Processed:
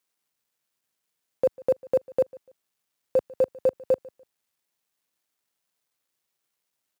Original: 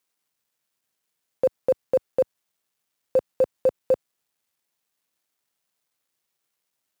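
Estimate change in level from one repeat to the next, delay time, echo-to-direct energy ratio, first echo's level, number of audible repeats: -11.5 dB, 146 ms, -22.0 dB, -22.5 dB, 2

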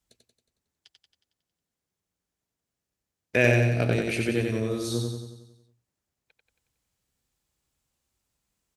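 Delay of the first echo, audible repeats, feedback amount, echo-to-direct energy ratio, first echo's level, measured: 91 ms, 7, 55%, -2.0 dB, -3.5 dB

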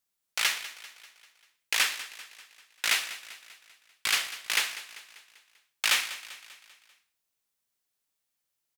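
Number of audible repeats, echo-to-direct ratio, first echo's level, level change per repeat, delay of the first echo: 4, -13.5 dB, -15.0 dB, -5.5 dB, 196 ms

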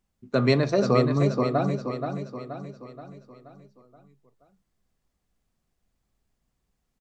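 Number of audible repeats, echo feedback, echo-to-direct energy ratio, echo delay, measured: 5, 49%, -5.5 dB, 477 ms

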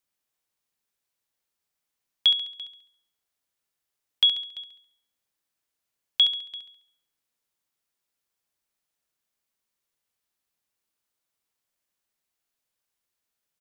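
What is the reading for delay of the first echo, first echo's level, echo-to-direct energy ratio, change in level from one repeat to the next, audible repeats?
69 ms, -8.5 dB, -7.5 dB, -7.0 dB, 4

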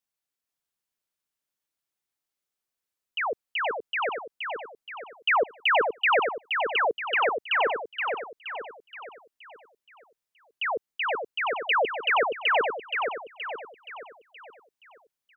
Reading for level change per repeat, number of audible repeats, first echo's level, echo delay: -6.5 dB, 5, -5.0 dB, 473 ms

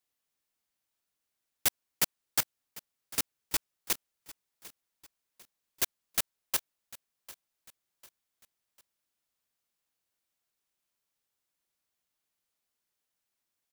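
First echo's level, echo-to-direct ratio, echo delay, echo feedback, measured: -19.0 dB, -18.0 dB, 748 ms, 42%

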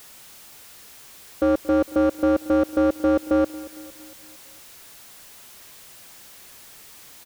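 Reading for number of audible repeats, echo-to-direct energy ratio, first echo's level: 4, -17.0 dB, -18.5 dB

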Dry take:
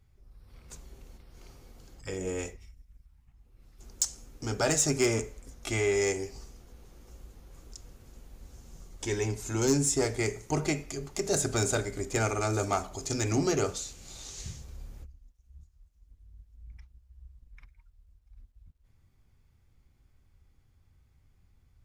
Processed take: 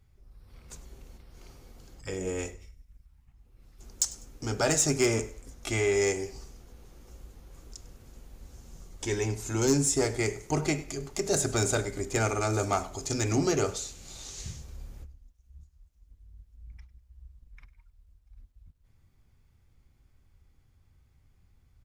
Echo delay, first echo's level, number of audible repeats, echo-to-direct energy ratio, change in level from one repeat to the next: 100 ms, -20.0 dB, 2, -19.5 dB, -11.0 dB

